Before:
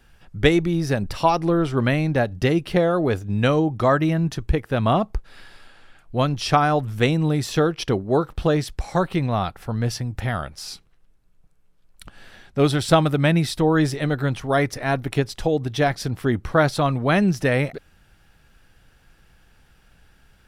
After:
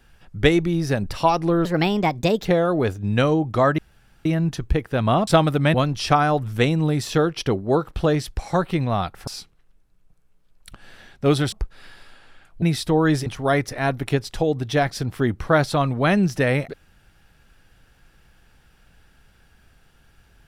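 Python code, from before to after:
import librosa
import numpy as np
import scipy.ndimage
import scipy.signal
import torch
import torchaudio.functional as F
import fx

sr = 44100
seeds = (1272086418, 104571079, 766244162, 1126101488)

y = fx.edit(x, sr, fx.speed_span(start_s=1.65, length_s=1.06, speed=1.32),
    fx.insert_room_tone(at_s=4.04, length_s=0.47),
    fx.swap(start_s=5.06, length_s=1.1, other_s=12.86, other_length_s=0.47),
    fx.cut(start_s=9.69, length_s=0.92),
    fx.cut(start_s=13.97, length_s=0.34), tone=tone)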